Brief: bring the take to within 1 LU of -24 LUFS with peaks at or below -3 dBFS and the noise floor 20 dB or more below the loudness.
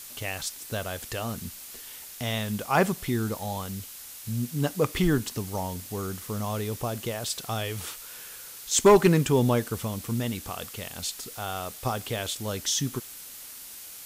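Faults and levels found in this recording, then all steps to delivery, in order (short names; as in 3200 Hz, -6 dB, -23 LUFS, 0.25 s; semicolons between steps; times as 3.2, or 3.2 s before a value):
noise floor -43 dBFS; noise floor target -48 dBFS; loudness -28.0 LUFS; peak -9.5 dBFS; loudness target -24.0 LUFS
-> noise print and reduce 6 dB; gain +4 dB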